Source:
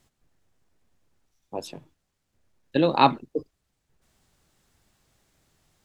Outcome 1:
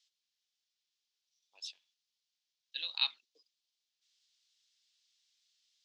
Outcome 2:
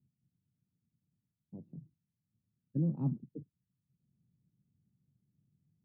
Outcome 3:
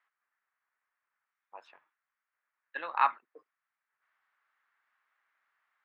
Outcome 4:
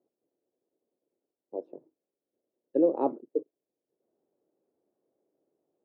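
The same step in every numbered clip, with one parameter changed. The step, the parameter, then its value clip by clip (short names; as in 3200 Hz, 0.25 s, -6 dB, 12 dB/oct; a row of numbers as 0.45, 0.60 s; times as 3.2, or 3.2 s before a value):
Butterworth band-pass, frequency: 4300, 150, 1500, 420 Hz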